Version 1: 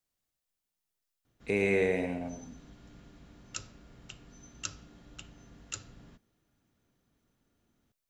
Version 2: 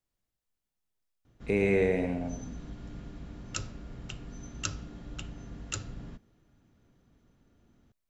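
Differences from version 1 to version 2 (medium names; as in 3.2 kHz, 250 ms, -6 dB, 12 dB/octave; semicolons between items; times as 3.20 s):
background +6.5 dB; master: add tilt EQ -1.5 dB/octave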